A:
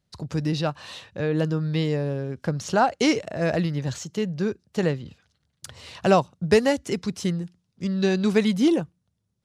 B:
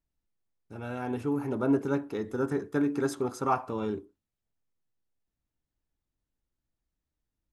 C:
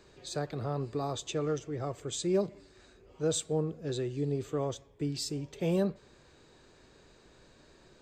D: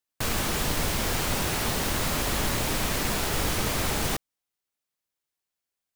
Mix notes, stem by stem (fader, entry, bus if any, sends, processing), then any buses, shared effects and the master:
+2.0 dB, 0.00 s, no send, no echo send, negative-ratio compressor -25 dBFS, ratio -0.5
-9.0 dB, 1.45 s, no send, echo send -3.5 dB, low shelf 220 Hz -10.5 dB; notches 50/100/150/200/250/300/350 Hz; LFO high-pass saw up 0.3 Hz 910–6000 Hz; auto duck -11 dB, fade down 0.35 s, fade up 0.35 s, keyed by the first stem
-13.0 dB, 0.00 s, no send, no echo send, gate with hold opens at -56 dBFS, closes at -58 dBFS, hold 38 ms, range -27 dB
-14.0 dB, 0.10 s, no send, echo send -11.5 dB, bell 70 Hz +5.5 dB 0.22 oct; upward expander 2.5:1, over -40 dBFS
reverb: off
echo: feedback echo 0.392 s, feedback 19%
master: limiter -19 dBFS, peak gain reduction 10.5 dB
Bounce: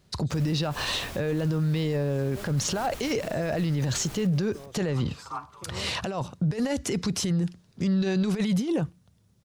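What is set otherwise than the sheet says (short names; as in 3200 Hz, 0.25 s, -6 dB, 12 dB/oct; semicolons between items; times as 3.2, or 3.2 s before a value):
stem A +2.0 dB -> +9.5 dB; stem D: missing upward expander 2.5:1, over -40 dBFS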